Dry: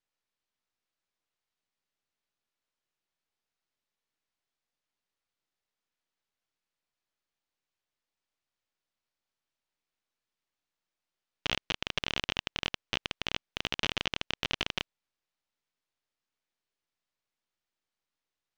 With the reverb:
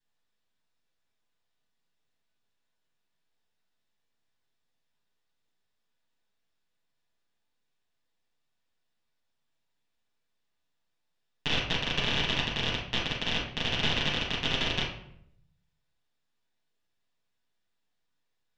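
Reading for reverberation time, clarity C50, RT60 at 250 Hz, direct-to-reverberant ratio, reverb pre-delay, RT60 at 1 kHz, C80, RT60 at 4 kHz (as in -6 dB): 0.70 s, 4.0 dB, 0.90 s, -7.0 dB, 7 ms, 0.65 s, 8.5 dB, 0.50 s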